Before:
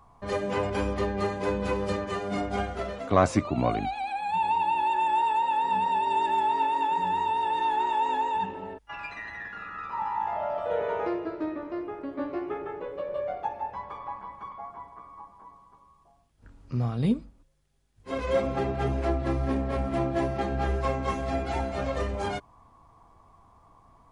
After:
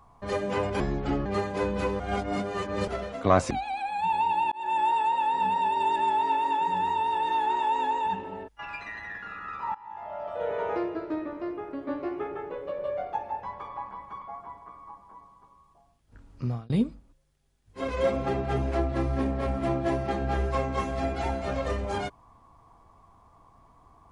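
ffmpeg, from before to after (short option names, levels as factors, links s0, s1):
-filter_complex "[0:a]asplit=9[s0][s1][s2][s3][s4][s5][s6][s7][s8];[s0]atrim=end=0.804[s9];[s1]atrim=start=0.8:end=1.12,asetpts=PTS-STARTPTS,asetrate=30870,aresample=44100[s10];[s2]atrim=start=1.116:end=1.862[s11];[s3]atrim=start=1.858:end=2.742,asetpts=PTS-STARTPTS,areverse[s12];[s4]atrim=start=2.738:end=3.372[s13];[s5]atrim=start=3.808:end=4.82,asetpts=PTS-STARTPTS,afade=t=out:st=1.008:d=0.004:c=hsin[s14];[s6]atrim=start=4.82:end=10.05,asetpts=PTS-STARTPTS,afade=t=in:d=0.25,afade=t=out:st=5.226:d=0.004:c=hsin:silence=0.0891251[s15];[s7]atrim=start=10.05:end=17,asetpts=PTS-STARTPTS,afade=t=in:d=0.95:silence=0.0891251,afade=t=out:st=6.69:d=0.26[s16];[s8]atrim=start=17,asetpts=PTS-STARTPTS,afade=t=in:d=0.004:c=hsin[s17];[s9][s10]acrossfade=d=0.004:c1=hsin:c2=hsin[s18];[s18][s11]acrossfade=d=0.004:c1=hsin:c2=hsin[s19];[s19][s12]acrossfade=d=0.004:c1=hsin:c2=hsin[s20];[s20][s13]acrossfade=d=0.004:c1=hsin:c2=hsin[s21];[s14][s15][s16][s17]concat=n=4:v=0:a=1[s22];[s21][s22]acrossfade=d=0.004:c1=hsin:c2=hsin"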